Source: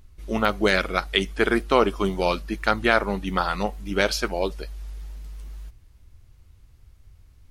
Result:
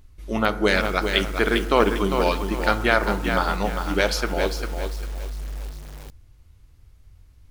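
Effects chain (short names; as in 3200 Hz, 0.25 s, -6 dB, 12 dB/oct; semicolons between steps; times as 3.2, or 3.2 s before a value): FDN reverb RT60 1.2 s, low-frequency decay 1.3×, high-frequency decay 0.3×, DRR 11.5 dB; lo-fi delay 0.4 s, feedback 35%, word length 6-bit, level -6 dB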